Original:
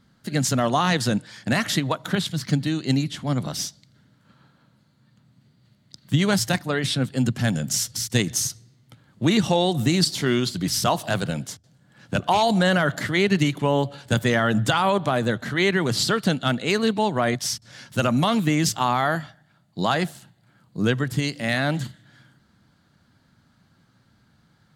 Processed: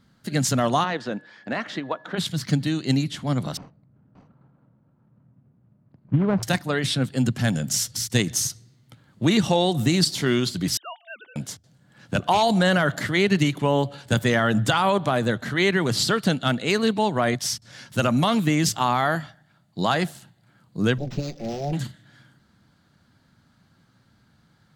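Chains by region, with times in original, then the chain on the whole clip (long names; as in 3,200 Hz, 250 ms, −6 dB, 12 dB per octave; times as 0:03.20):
0:00.83–0:02.17: high-pass filter 320 Hz + steady tone 1,700 Hz −46 dBFS + head-to-tape spacing loss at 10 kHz 29 dB
0:03.57–0:06.43: running median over 25 samples + low-pass filter 1,500 Hz + single-tap delay 580 ms −9.5 dB
0:10.77–0:11.36: three sine waves on the formant tracks + first difference
0:20.98–0:21.73: lower of the sound and its delayed copy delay 5.7 ms + Chebyshev band-stop filter 790–4,900 Hz, order 5 + linearly interpolated sample-rate reduction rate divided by 4×
whole clip: no processing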